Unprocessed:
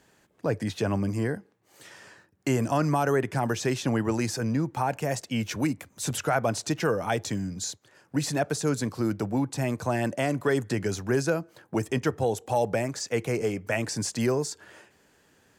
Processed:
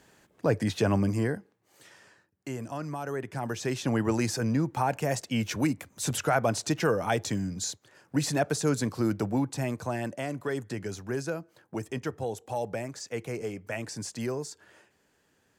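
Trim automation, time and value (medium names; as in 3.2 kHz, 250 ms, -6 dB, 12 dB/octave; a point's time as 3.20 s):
1.01 s +2 dB
2.48 s -11 dB
2.98 s -11 dB
4.05 s 0 dB
9.27 s 0 dB
10.22 s -7 dB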